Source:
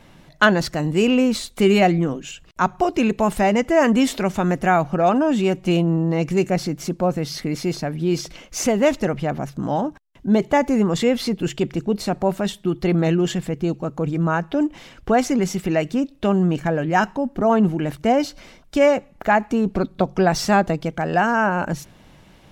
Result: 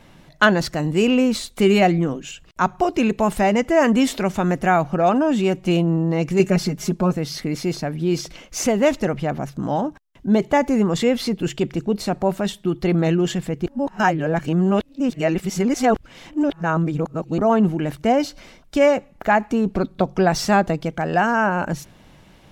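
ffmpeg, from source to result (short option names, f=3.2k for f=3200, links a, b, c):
-filter_complex "[0:a]asettb=1/sr,asplit=3[a][b][c];[a]atrim=end=6.394[d];[b]atrim=start=6.39:end=7.13,asetpts=PTS-STARTPTS,afade=t=in:d=0.004:c=qsin,afade=t=out:st=0.736:d=0.004:c=qsin,aecho=1:1:4.8:0.88,atrim=end_sample=32634[e];[c]atrim=start=7.126[f];[d][e]acrossfade=d=0.004:c1=hsin:c2=qsin[g];[g][f]acrossfade=d=0.004:c1=qsin:c2=hsin,asplit=3[h][i][j];[h]atrim=end=13.662[k];[i]atrim=start=13.658:end=17.382,asetpts=PTS-STARTPTS,areverse[l];[j]atrim=start=17.378[m];[k][l]acrossfade=d=0.004:c1=hsin:c2=hsin[n];[n][m]acrossfade=d=0.004:c1=hsin:c2=hsin"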